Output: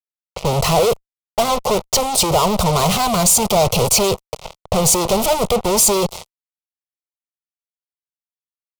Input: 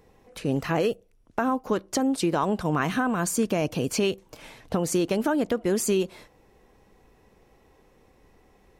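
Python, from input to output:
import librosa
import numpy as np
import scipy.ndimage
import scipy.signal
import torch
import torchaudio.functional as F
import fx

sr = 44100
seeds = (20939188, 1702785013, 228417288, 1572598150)

y = fx.env_lowpass(x, sr, base_hz=900.0, full_db=-25.0)
y = fx.fuzz(y, sr, gain_db=41.0, gate_db=-43.0)
y = fx.fixed_phaser(y, sr, hz=690.0, stages=4)
y = y * 10.0 ** (3.5 / 20.0)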